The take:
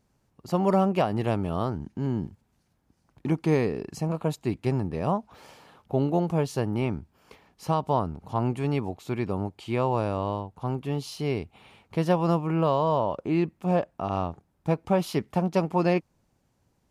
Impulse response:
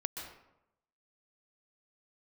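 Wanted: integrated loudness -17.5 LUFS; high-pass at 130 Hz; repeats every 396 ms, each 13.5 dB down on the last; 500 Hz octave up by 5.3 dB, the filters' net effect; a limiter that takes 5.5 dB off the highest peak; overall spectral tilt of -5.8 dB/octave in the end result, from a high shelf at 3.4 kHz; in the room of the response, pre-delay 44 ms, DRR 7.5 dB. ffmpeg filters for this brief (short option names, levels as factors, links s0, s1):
-filter_complex "[0:a]highpass=130,equalizer=f=500:t=o:g=6.5,highshelf=f=3400:g=3.5,alimiter=limit=0.251:level=0:latency=1,aecho=1:1:396|792:0.211|0.0444,asplit=2[s0][s1];[1:a]atrim=start_sample=2205,adelay=44[s2];[s1][s2]afir=irnorm=-1:irlink=0,volume=0.376[s3];[s0][s3]amix=inputs=2:normalize=0,volume=2.51"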